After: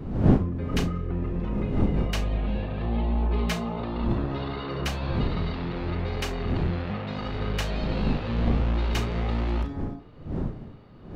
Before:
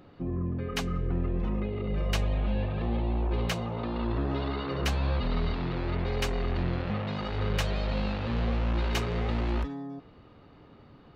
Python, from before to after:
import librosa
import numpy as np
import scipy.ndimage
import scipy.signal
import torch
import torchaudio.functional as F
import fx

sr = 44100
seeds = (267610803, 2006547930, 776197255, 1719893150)

y = fx.dmg_wind(x, sr, seeds[0], corner_hz=210.0, level_db=-31.0)
y = fx.comb(y, sr, ms=4.7, depth=0.7, at=(2.96, 3.8))
y = fx.room_early_taps(y, sr, ms=(35, 66), db=(-9.0, -18.0))